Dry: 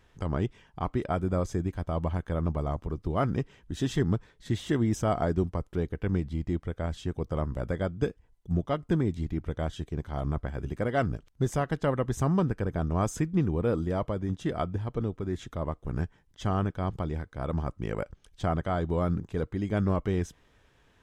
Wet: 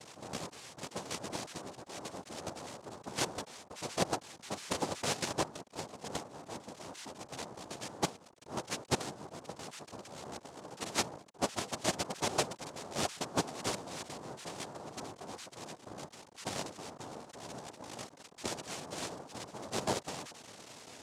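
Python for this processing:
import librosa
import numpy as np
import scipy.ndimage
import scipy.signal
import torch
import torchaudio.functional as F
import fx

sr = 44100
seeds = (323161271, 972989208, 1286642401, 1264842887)

y = x + 0.5 * 10.0 ** (-29.0 / 20.0) * np.sign(x)
y = fx.cheby_harmonics(y, sr, harmonics=(3, 4, 6, 8), levels_db=(-8, -21, -14, -23), full_scale_db=-12.5)
y = fx.noise_vocoder(y, sr, seeds[0], bands=2)
y = F.gain(torch.from_numpy(y), -2.0).numpy()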